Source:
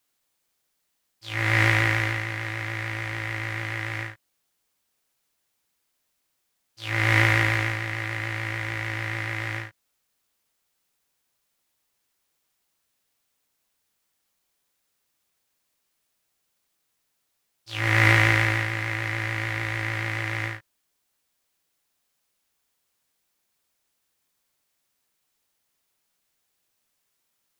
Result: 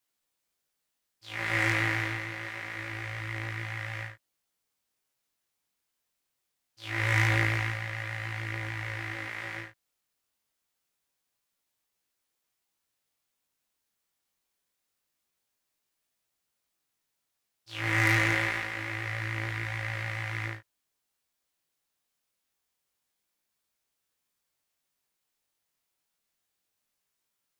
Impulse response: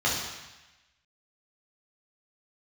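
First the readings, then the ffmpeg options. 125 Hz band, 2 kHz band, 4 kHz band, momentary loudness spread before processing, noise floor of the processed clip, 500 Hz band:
-6.5 dB, -6.0 dB, -6.0 dB, 14 LU, -82 dBFS, -6.0 dB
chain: -af "aeval=exprs='0.841*(cos(1*acos(clip(val(0)/0.841,-1,1)))-cos(1*PI/2))+0.299*(cos(5*acos(clip(val(0)/0.841,-1,1)))-cos(5*PI/2))+0.15*(cos(7*acos(clip(val(0)/0.841,-1,1)))-cos(7*PI/2))':c=same,flanger=delay=16.5:depth=8:speed=0.25,volume=0.447"

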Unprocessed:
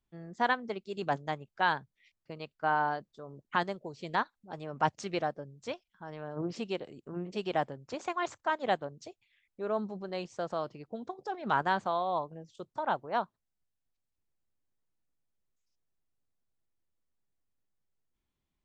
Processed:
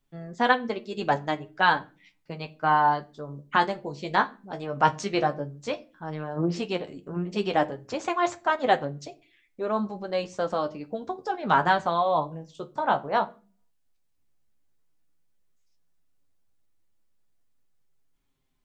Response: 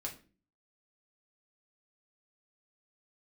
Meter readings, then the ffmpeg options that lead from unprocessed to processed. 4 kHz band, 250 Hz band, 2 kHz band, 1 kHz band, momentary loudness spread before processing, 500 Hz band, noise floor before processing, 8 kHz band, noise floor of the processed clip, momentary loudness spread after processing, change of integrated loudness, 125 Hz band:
+7.5 dB, +7.5 dB, +7.0 dB, +7.5 dB, 13 LU, +7.0 dB, -85 dBFS, +7.5 dB, -69 dBFS, 13 LU, +7.5 dB, +8.0 dB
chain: -filter_complex "[0:a]flanger=delay=7.1:depth=8.4:regen=30:speed=0.11:shape=triangular,asplit=2[s0][s1];[1:a]atrim=start_sample=2205[s2];[s1][s2]afir=irnorm=-1:irlink=0,volume=0.531[s3];[s0][s3]amix=inputs=2:normalize=0,volume=2.66"

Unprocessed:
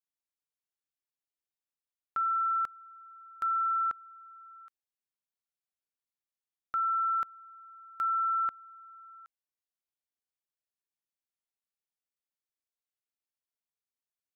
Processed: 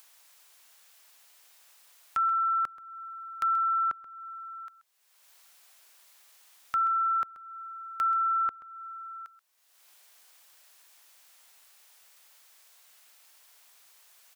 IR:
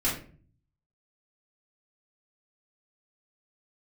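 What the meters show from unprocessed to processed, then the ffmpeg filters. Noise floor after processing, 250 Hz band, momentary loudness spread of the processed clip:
-63 dBFS, no reading, 18 LU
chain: -filter_complex "[0:a]acrossover=split=530[s0][s1];[s1]acompressor=mode=upward:threshold=0.0141:ratio=2.5[s2];[s0][s2]amix=inputs=2:normalize=0,aecho=1:1:131:0.141,volume=1.5"

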